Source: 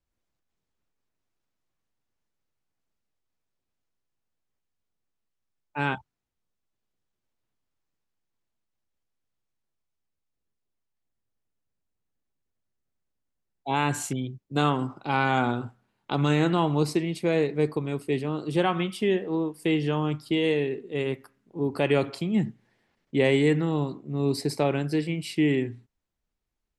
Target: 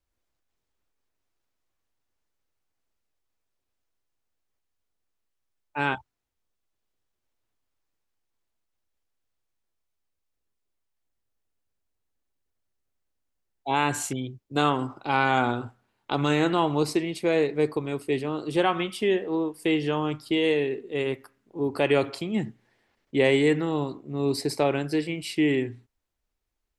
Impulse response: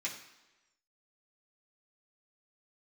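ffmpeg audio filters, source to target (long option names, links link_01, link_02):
-af "equalizer=frequency=170:width=1.6:gain=-8,volume=2dB"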